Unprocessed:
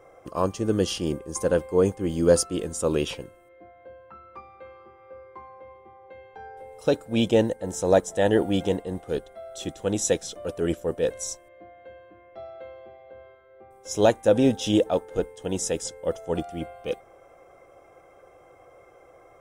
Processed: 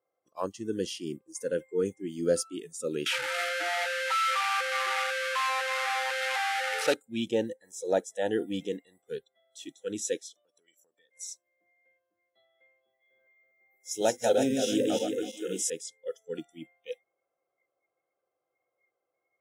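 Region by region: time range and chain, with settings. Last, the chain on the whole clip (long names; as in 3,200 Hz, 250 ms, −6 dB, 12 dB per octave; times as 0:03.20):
0:03.06–0:06.94: linear delta modulator 64 kbit/s, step −22.5 dBFS + high-pass filter 220 Hz 6 dB per octave + parametric band 1,800 Hz +12.5 dB 2.5 octaves
0:10.28–0:11.17: high-pass filter 440 Hz 6 dB per octave + downward compressor 10 to 1, threshold −39 dBFS
0:12.86–0:15.70: feedback delay that plays each chunk backwards 164 ms, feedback 64%, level −2 dB + high-shelf EQ 7,200 Hz +11.5 dB + mains-hum notches 50/100/150/200/250/300/350/400/450/500 Hz
whole clip: high-pass filter 170 Hz 12 dB per octave; noise reduction from a noise print of the clip's start 24 dB; level −7.5 dB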